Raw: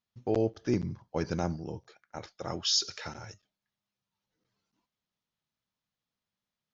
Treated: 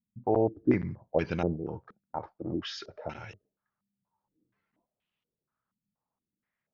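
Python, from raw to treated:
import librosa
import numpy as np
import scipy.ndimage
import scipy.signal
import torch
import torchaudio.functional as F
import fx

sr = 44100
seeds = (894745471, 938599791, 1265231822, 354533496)

y = fx.filter_held_lowpass(x, sr, hz=4.2, low_hz=210.0, high_hz=2800.0)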